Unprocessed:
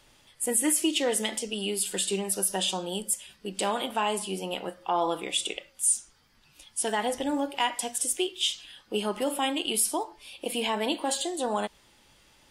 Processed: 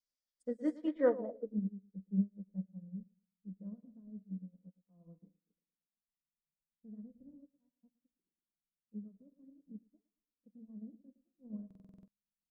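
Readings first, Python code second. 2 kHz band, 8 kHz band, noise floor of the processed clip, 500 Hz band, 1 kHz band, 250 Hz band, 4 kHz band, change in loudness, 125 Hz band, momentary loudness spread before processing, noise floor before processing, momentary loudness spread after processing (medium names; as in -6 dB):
under -20 dB, under -40 dB, under -85 dBFS, -10.0 dB, under -25 dB, -7.5 dB, under -40 dB, -11.5 dB, -2.0 dB, 9 LU, -61 dBFS, 21 LU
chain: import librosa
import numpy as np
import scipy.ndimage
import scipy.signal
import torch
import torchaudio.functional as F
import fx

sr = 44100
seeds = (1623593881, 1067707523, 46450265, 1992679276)

p1 = fx.peak_eq(x, sr, hz=1400.0, db=-7.5, octaves=1.1)
p2 = fx.fixed_phaser(p1, sr, hz=550.0, stages=8)
p3 = p2 + fx.echo_feedback(p2, sr, ms=113, feedback_pct=55, wet_db=-8.5, dry=0)
p4 = fx.filter_sweep_lowpass(p3, sr, from_hz=5300.0, to_hz=170.0, start_s=0.69, end_s=1.69, q=3.0)
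p5 = fx.high_shelf(p4, sr, hz=2700.0, db=9.5)
p6 = fx.env_lowpass_down(p5, sr, base_hz=1100.0, full_db=-28.0)
p7 = fx.rotary(p6, sr, hz=0.75)
p8 = fx.buffer_glitch(p7, sr, at_s=(11.66,), block=2048, repeats=8)
p9 = fx.upward_expand(p8, sr, threshold_db=-53.0, expansion=2.5)
y = F.gain(torch.from_numpy(p9), 3.0).numpy()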